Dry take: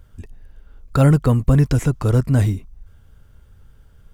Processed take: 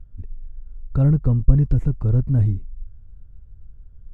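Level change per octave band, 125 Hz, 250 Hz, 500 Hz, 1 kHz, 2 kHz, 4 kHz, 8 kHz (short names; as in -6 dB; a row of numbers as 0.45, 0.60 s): -1.5 dB, -4.5 dB, -10.5 dB, under -10 dB, under -15 dB, n/a, under -25 dB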